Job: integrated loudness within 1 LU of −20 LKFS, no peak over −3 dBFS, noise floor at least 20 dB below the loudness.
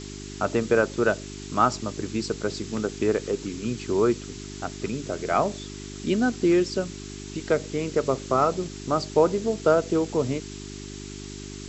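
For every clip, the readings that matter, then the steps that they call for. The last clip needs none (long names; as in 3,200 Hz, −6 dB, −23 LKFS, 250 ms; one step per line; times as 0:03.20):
mains hum 50 Hz; hum harmonics up to 400 Hz; level of the hum −37 dBFS; background noise floor −38 dBFS; target noise floor −46 dBFS; integrated loudness −25.5 LKFS; sample peak −6.0 dBFS; target loudness −20.0 LKFS
→ hum removal 50 Hz, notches 8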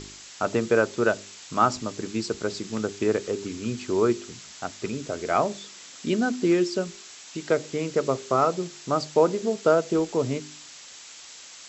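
mains hum none found; background noise floor −45 dBFS; target noise floor −46 dBFS
→ broadband denoise 6 dB, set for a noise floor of −45 dBFS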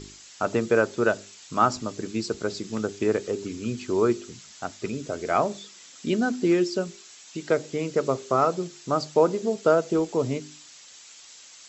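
background noise floor −49 dBFS; integrated loudness −26.0 LKFS; sample peak −6.0 dBFS; target loudness −20.0 LKFS
→ level +6 dB
brickwall limiter −3 dBFS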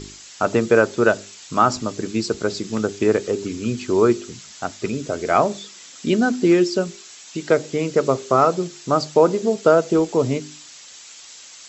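integrated loudness −20.0 LKFS; sample peak −3.0 dBFS; background noise floor −43 dBFS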